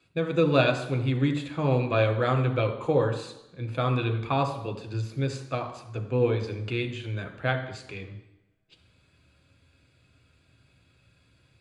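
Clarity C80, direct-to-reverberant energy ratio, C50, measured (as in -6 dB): 12.0 dB, 5.0 dB, 10.0 dB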